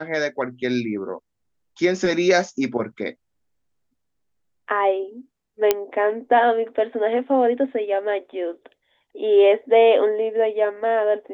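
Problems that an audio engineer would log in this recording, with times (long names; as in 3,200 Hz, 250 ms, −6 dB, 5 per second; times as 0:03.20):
0:05.71: click −3 dBFS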